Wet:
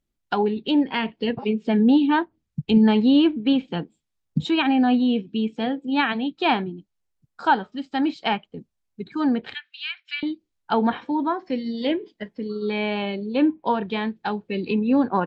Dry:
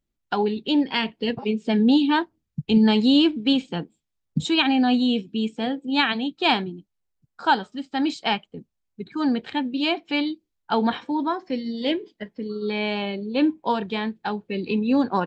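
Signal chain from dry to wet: low-pass that closes with the level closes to 2.3 kHz, closed at -20 dBFS; 9.54–10.23 s: elliptic high-pass 1.5 kHz, stop band 70 dB; trim +1 dB

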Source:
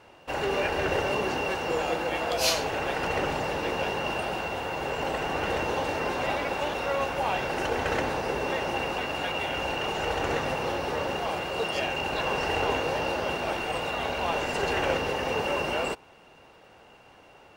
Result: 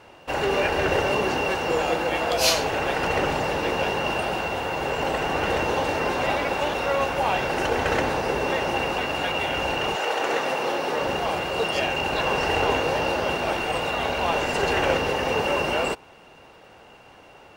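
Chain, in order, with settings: 9.95–11.01 s: high-pass 440 Hz -> 190 Hz 12 dB/octave; trim +4.5 dB

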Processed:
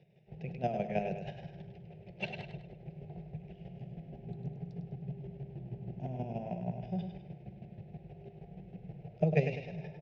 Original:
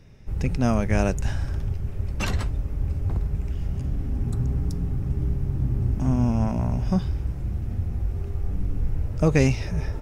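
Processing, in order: square tremolo 6.3 Hz, depth 60%, duty 20%; cabinet simulation 130–3600 Hz, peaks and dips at 160 Hz +7 dB, 240 Hz -8 dB, 340 Hz +9 dB, 710 Hz +10 dB, 1.4 kHz -7 dB, 2.6 kHz +4 dB; static phaser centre 300 Hz, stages 6; feedback delay 101 ms, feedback 41%, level -7.5 dB; trim -6.5 dB

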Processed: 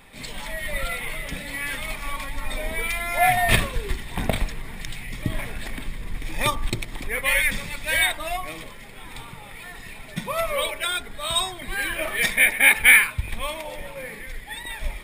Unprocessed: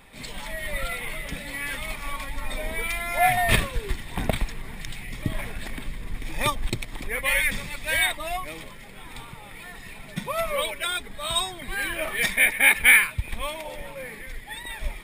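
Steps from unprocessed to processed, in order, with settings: de-hum 48.29 Hz, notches 33; trim +2 dB

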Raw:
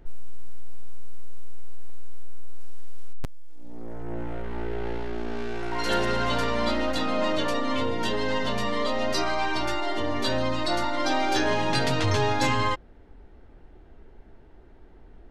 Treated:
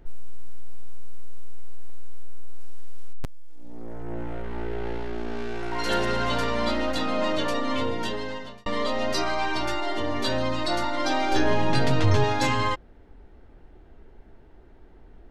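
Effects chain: 7.89–8.66 s: fade out; 11.32–12.24 s: tilt EQ -1.5 dB/octave

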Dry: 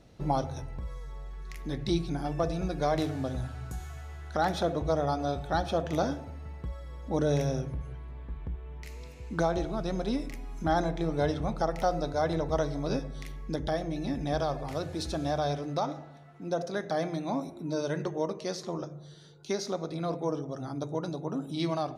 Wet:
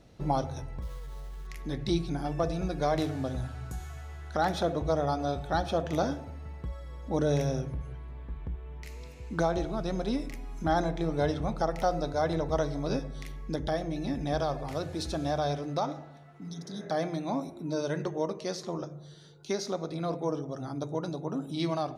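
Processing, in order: 0.82–1.47 s: sample-rate reducer 5.1 kHz, jitter 20%; 16.43–16.83 s: spectral replace 300–3100 Hz both

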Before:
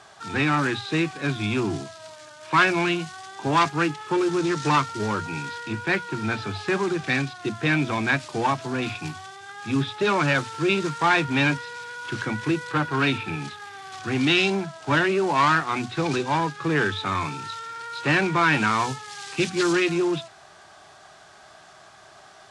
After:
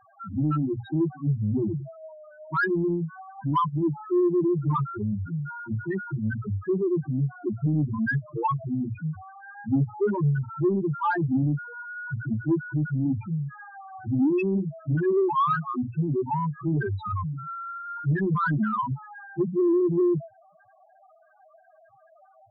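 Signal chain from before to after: tone controls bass +5 dB, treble -10 dB; loudest bins only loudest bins 2; saturation -17 dBFS, distortion -23 dB; trim +2.5 dB

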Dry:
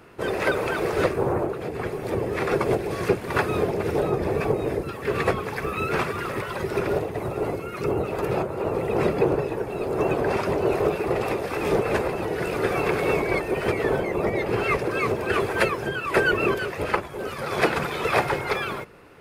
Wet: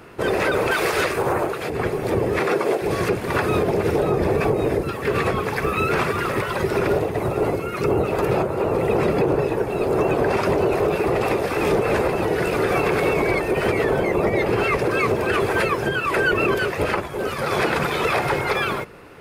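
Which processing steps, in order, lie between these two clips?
0.71–1.70 s: tilt shelf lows -7 dB, about 840 Hz; 2.39–2.81 s: high-pass 140 Hz -> 440 Hz 12 dB/octave; peak limiter -17 dBFS, peak gain reduction 10 dB; trim +6 dB

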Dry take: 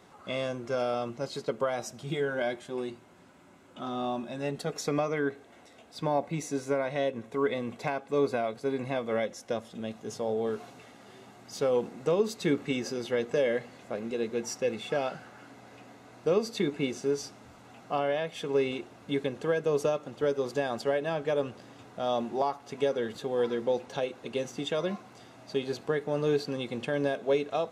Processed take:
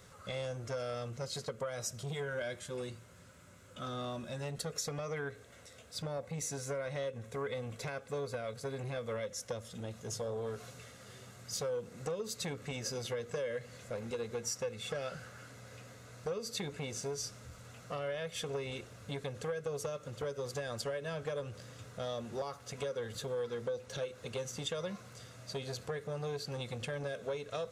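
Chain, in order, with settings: FFT filter 110 Hz 0 dB, 330 Hz -21 dB, 510 Hz -6 dB, 790 Hz -21 dB, 1.3 kHz -8 dB, 2.7 kHz -10 dB, 7 kHz -2 dB; compression 6:1, threshold -42 dBFS, peak gain reduction 12 dB; transformer saturation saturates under 670 Hz; trim +8.5 dB

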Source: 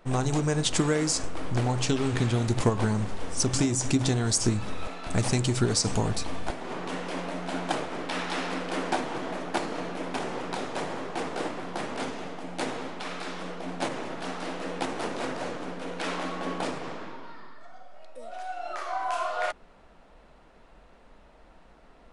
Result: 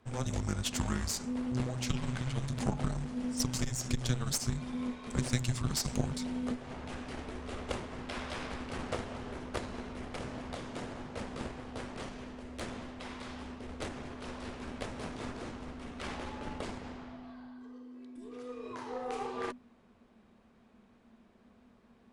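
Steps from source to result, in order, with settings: frequency shift -250 Hz; Chebyshev shaper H 4 -12 dB, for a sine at -6.5 dBFS; trim -8.5 dB

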